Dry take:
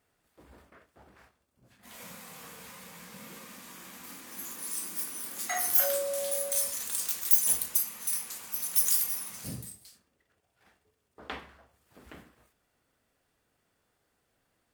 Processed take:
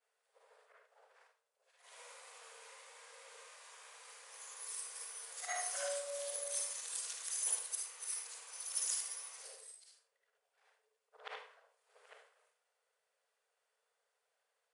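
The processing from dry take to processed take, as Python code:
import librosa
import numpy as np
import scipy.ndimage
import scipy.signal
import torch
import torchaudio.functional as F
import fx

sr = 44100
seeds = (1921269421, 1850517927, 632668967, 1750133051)

y = fx.frame_reverse(x, sr, frame_ms=152.0)
y = fx.brickwall_bandpass(y, sr, low_hz=410.0, high_hz=11000.0)
y = y + 10.0 ** (-15.0 / 20.0) * np.pad(y, (int(78 * sr / 1000.0), 0))[:len(y)]
y = y * librosa.db_to_amplitude(-4.0)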